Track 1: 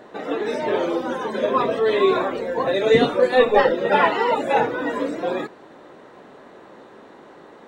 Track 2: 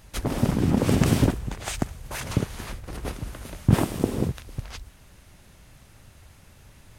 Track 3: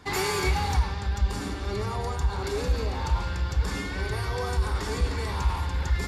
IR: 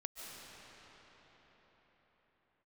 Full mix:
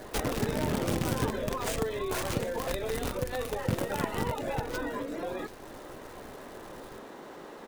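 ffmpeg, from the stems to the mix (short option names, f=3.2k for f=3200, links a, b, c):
-filter_complex "[0:a]acompressor=threshold=-25dB:ratio=6,alimiter=level_in=1dB:limit=-24dB:level=0:latency=1:release=317,volume=-1dB,volume=-0.5dB[a];[1:a]acompressor=threshold=-31dB:ratio=3,acrusher=bits=6:dc=4:mix=0:aa=0.000001,volume=0dB,asplit=2[b][c];[c]volume=-16dB,aecho=0:1:738:1[d];[a][b][d]amix=inputs=3:normalize=0,aeval=exprs='val(0)*gte(abs(val(0)),0.00251)':c=same"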